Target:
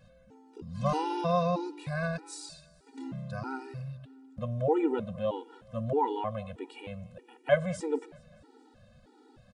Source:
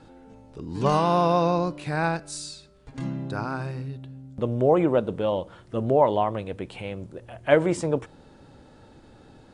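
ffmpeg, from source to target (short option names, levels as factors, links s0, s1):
-af "aecho=1:1:208|416|624|832:0.075|0.0405|0.0219|0.0118,afftfilt=real='re*gt(sin(2*PI*1.6*pts/sr)*(1-2*mod(floor(b*sr/1024/250),2)),0)':imag='im*gt(sin(2*PI*1.6*pts/sr)*(1-2*mod(floor(b*sr/1024/250),2)),0)':win_size=1024:overlap=0.75,volume=0.596"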